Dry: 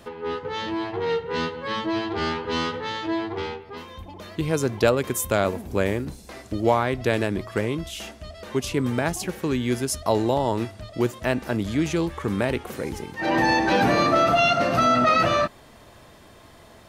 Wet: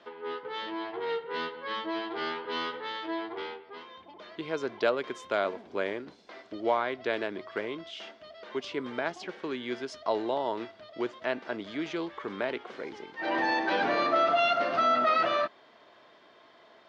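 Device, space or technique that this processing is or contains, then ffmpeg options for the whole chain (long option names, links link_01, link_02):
phone earpiece: -af "highpass=500,equalizer=frequency=520:width_type=q:width=4:gain=-5,equalizer=frequency=820:width_type=q:width=4:gain=-6,equalizer=frequency=1200:width_type=q:width=4:gain=-4,equalizer=frequency=1800:width_type=q:width=4:gain=-4,equalizer=frequency=2600:width_type=q:width=4:gain=-7,equalizer=frequency=4000:width_type=q:width=4:gain=-4,lowpass=frequency=4000:width=0.5412,lowpass=frequency=4000:width=1.3066,volume=-1dB"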